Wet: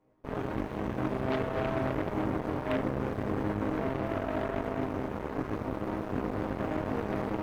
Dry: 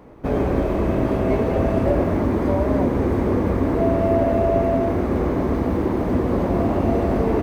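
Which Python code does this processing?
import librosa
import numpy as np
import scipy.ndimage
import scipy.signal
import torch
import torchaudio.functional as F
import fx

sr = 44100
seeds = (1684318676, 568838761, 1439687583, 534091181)

y = fx.resonator_bank(x, sr, root=44, chord='major', decay_s=0.43)
y = fx.cheby_harmonics(y, sr, harmonics=(5, 7, 8), levels_db=(-6, -7, -14), full_scale_db=-21.0)
y = y * 10.0 ** (-1.0 / 20.0)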